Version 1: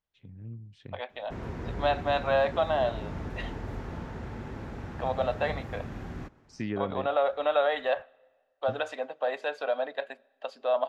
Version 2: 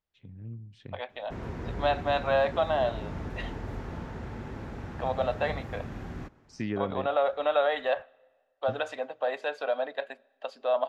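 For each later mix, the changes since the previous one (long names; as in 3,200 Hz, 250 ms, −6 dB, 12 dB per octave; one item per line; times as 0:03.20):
first voice: send on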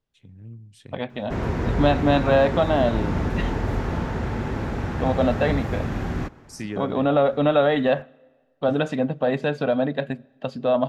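first voice: remove high-frequency loss of the air 190 metres
second voice: remove four-pole ladder high-pass 470 Hz, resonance 20%
background +12.0 dB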